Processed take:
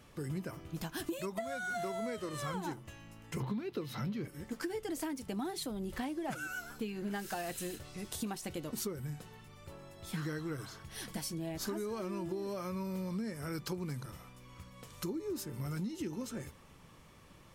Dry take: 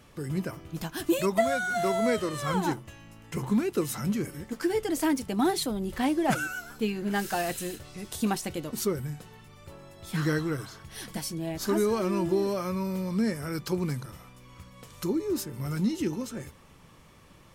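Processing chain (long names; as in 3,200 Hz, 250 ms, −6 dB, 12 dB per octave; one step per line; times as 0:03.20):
0:03.40–0:04.28: octave-band graphic EQ 125/250/500/1,000/2,000/4,000/8,000 Hz +9/+4/+6/+4/+4/+12/−12 dB
downward compressor 12 to 1, threshold −31 dBFS, peak gain reduction 17.5 dB
level −3.5 dB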